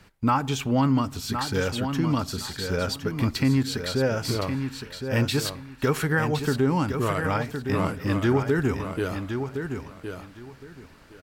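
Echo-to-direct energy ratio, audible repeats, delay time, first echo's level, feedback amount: -7.5 dB, 2, 1.064 s, -7.5 dB, 20%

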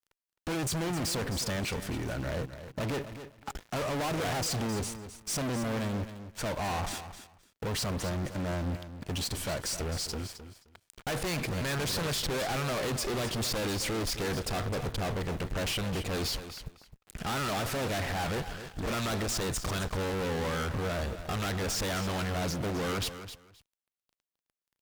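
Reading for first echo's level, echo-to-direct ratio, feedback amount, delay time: -11.5 dB, -11.5 dB, 17%, 0.262 s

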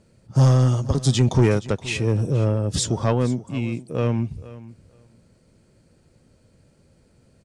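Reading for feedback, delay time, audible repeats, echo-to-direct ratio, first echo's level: 16%, 0.472 s, 2, -18.0 dB, -18.0 dB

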